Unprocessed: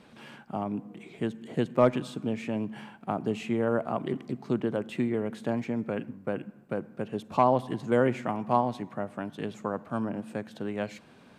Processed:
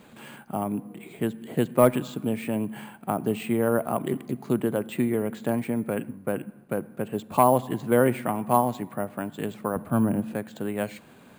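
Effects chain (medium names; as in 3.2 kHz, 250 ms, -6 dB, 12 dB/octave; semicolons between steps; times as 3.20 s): 9.76–10.35 s: bass shelf 250 Hz +10 dB; careless resampling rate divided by 4×, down filtered, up hold; trim +3.5 dB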